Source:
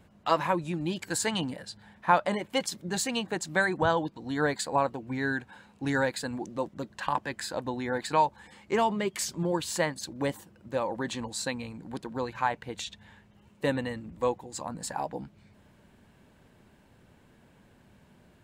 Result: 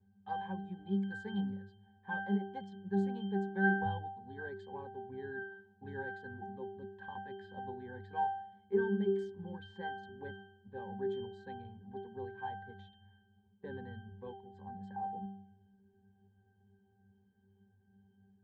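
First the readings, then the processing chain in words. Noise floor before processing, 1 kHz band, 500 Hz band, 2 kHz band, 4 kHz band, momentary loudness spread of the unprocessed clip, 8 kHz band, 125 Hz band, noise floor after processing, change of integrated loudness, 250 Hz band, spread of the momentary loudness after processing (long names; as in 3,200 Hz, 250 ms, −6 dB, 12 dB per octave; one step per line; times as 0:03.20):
−60 dBFS, −10.5 dB, −9.0 dB, −8.5 dB, −20.0 dB, 10 LU, below −40 dB, −6.0 dB, −70 dBFS, −9.0 dB, −5.5 dB, 15 LU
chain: leveller curve on the samples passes 1
resonances in every octave G, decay 0.7 s
low-pass that shuts in the quiet parts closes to 2,900 Hz, open at −41 dBFS
level +7.5 dB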